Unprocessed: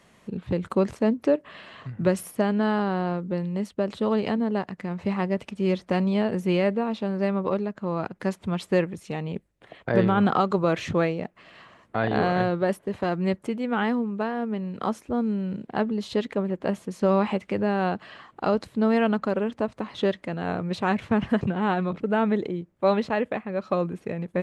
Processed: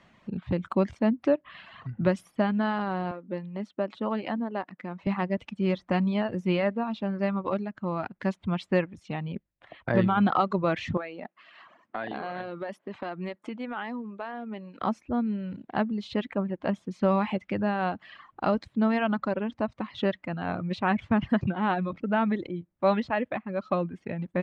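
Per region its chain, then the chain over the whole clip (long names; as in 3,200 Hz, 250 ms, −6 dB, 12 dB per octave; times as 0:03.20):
0:03.11–0:05.07: high-pass filter 240 Hz + high-shelf EQ 3,000 Hz −6.5 dB
0:10.97–0:14.82: high-pass filter 270 Hz + downward compressor 4 to 1, threshold −27 dBFS
whole clip: reverb reduction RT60 0.8 s; low-pass filter 3,900 Hz 12 dB per octave; parametric band 440 Hz −8.5 dB 0.4 octaves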